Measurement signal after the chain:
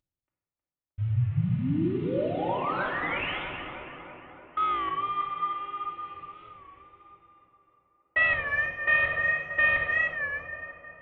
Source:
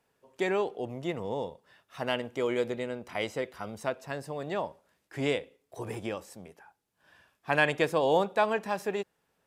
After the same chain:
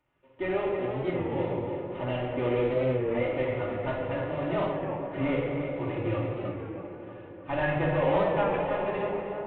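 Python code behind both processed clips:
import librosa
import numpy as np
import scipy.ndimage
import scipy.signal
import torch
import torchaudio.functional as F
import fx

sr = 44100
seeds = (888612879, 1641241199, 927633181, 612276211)

p1 = fx.cvsd(x, sr, bps=16000)
p2 = fx.low_shelf(p1, sr, hz=100.0, db=6.5)
p3 = fx.rider(p2, sr, range_db=5, speed_s=2.0)
p4 = fx.notch(p3, sr, hz=1600.0, q=13.0)
p5 = fx.notch_comb(p4, sr, f0_hz=220.0)
p6 = p5 + fx.echo_tape(p5, sr, ms=314, feedback_pct=71, wet_db=-5, lp_hz=2000.0, drive_db=12.0, wow_cents=26, dry=0)
p7 = fx.room_shoebox(p6, sr, seeds[0], volume_m3=1600.0, walls='mixed', distance_m=2.6)
p8 = fx.record_warp(p7, sr, rpm=33.33, depth_cents=100.0)
y = p8 * librosa.db_to_amplitude(-2.5)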